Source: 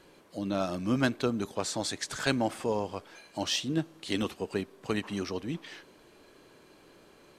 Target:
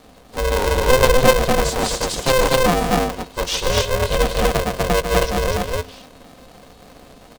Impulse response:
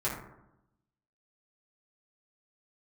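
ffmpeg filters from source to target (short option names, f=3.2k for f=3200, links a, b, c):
-filter_complex "[0:a]asuperstop=centerf=1600:order=4:qfactor=0.87,lowshelf=f=300:g=9.5,aecho=1:1:4.2:0.66,aecho=1:1:145.8|247.8:0.355|0.891,asplit=2[a][b];[1:a]atrim=start_sample=2205,afade=t=out:st=0.18:d=0.01,atrim=end_sample=8379[c];[b][c]afir=irnorm=-1:irlink=0,volume=-23.5dB[d];[a][d]amix=inputs=2:normalize=0,aeval=exprs='val(0)*sgn(sin(2*PI*260*n/s))':c=same,volume=5.5dB"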